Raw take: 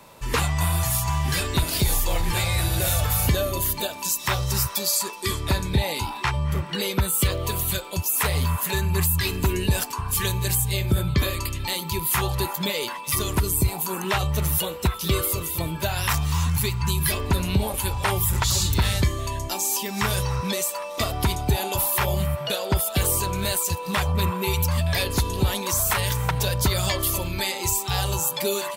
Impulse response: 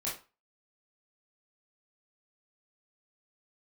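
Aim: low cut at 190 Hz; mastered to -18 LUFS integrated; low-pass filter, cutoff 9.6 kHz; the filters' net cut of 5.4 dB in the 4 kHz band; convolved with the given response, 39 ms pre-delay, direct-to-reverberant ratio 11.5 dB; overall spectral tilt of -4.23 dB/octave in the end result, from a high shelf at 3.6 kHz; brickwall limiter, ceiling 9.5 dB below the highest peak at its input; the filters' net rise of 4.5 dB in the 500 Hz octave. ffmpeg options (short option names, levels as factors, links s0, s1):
-filter_complex "[0:a]highpass=190,lowpass=9600,equalizer=f=500:t=o:g=6,highshelf=f=3600:g=-4,equalizer=f=4000:t=o:g=-4,alimiter=limit=0.133:level=0:latency=1,asplit=2[s0][s1];[1:a]atrim=start_sample=2205,adelay=39[s2];[s1][s2]afir=irnorm=-1:irlink=0,volume=0.188[s3];[s0][s3]amix=inputs=2:normalize=0,volume=3.35"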